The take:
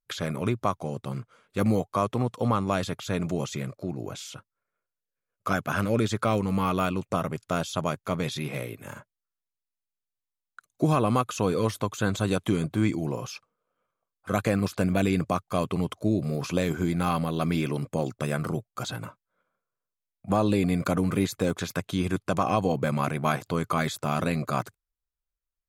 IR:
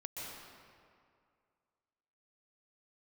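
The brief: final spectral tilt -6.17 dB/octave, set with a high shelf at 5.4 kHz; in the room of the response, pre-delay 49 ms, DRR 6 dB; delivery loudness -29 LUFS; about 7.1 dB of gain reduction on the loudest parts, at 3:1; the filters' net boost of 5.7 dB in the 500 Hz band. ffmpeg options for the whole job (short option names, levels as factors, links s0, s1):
-filter_complex "[0:a]equalizer=f=500:t=o:g=7,highshelf=f=5400:g=-5,acompressor=threshold=0.0501:ratio=3,asplit=2[s0][s1];[1:a]atrim=start_sample=2205,adelay=49[s2];[s1][s2]afir=irnorm=-1:irlink=0,volume=0.531[s3];[s0][s3]amix=inputs=2:normalize=0,volume=1.12"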